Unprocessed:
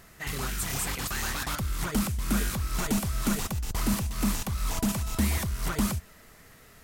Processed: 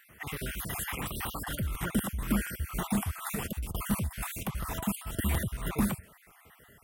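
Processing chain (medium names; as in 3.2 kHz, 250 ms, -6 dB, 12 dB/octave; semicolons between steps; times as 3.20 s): random holes in the spectrogram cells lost 42%; high-pass 55 Hz 12 dB/octave; high-order bell 5.4 kHz -11 dB 1.1 oct; crackling interface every 0.24 s, samples 256, repeat, from 0.54 s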